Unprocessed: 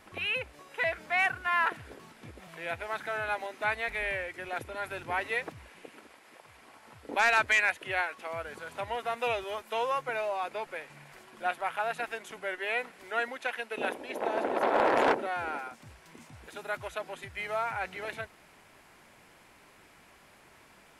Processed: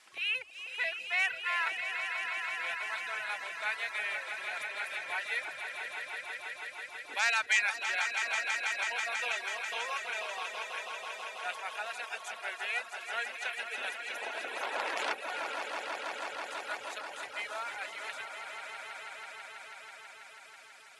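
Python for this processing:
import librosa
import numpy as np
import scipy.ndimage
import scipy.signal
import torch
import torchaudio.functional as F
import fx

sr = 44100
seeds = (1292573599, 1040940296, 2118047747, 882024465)

y = fx.weighting(x, sr, curve='ITU-R 468')
y = fx.echo_swell(y, sr, ms=163, loudest=5, wet_db=-8.5)
y = fx.dereverb_blind(y, sr, rt60_s=0.78)
y = y * librosa.db_to_amplitude(-8.0)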